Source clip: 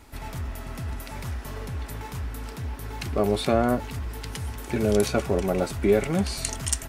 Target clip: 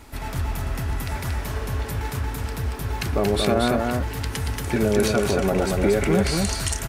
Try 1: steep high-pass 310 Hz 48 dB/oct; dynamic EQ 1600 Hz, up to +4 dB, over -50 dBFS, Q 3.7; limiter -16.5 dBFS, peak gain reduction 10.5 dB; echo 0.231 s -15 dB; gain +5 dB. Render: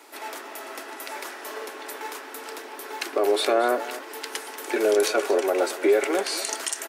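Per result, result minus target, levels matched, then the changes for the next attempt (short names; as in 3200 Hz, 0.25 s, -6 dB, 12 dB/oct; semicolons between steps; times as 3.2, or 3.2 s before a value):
echo-to-direct -11.5 dB; 250 Hz band -6.0 dB
change: echo 0.231 s -3.5 dB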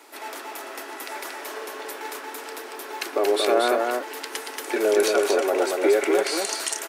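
250 Hz band -6.0 dB
remove: steep high-pass 310 Hz 48 dB/oct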